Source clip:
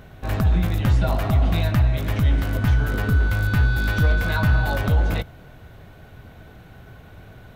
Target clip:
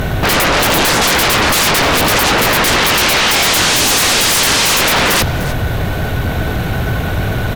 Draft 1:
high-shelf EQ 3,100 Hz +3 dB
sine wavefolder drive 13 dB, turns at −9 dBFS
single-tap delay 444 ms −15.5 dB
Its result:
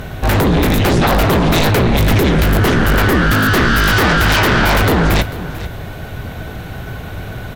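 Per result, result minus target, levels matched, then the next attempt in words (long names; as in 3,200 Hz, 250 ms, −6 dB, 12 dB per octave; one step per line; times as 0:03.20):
echo 143 ms late; sine wavefolder: distortion −11 dB
high-shelf EQ 3,100 Hz +3 dB
sine wavefolder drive 13 dB, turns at −9 dBFS
single-tap delay 301 ms −15.5 dB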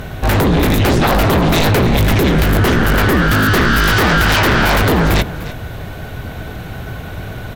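sine wavefolder: distortion −11 dB
high-shelf EQ 3,100 Hz +3 dB
sine wavefolder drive 24 dB, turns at −9 dBFS
single-tap delay 301 ms −15.5 dB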